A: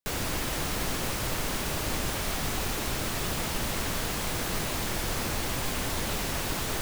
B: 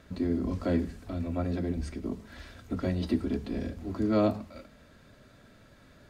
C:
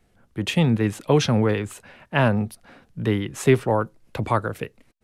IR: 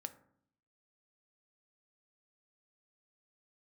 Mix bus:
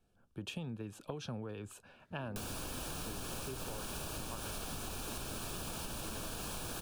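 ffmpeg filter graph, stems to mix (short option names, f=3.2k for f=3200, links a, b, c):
-filter_complex "[0:a]equalizer=f=9.6k:w=3.8:g=5.5,adelay=2300,volume=2dB[a];[1:a]adelay=2000,volume=-17.5dB[b];[2:a]volume=-12dB[c];[a][c]amix=inputs=2:normalize=0,asuperstop=centerf=2000:order=4:qfactor=3.6,acompressor=threshold=-29dB:ratio=6,volume=0dB[d];[b][d]amix=inputs=2:normalize=0,acompressor=threshold=-39dB:ratio=6"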